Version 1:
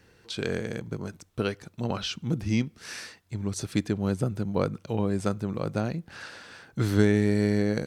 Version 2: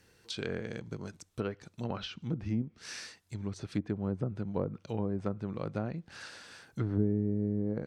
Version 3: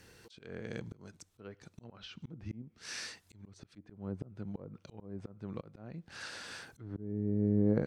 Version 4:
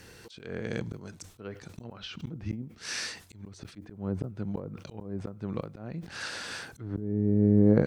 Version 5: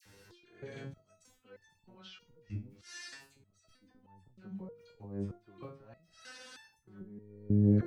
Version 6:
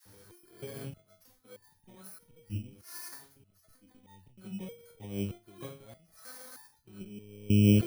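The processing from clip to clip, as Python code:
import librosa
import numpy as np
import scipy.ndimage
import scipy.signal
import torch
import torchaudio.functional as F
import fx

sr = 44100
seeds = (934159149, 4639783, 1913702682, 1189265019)

y1 = fx.high_shelf(x, sr, hz=4800.0, db=10.0)
y1 = fx.env_lowpass_down(y1, sr, base_hz=370.0, full_db=-19.0)
y1 = y1 * librosa.db_to_amplitude(-6.5)
y2 = fx.auto_swell(y1, sr, attack_ms=737.0)
y2 = y2 * librosa.db_to_amplitude(5.5)
y3 = fx.sustainer(y2, sr, db_per_s=130.0)
y3 = y3 * librosa.db_to_amplitude(7.5)
y4 = fx.dispersion(y3, sr, late='lows', ms=56.0, hz=1400.0)
y4 = fx.resonator_held(y4, sr, hz=3.2, low_hz=100.0, high_hz=890.0)
y4 = y4 * librosa.db_to_amplitude(1.0)
y5 = fx.bit_reversed(y4, sr, seeds[0], block=16)
y5 = y5 * librosa.db_to_amplitude(3.5)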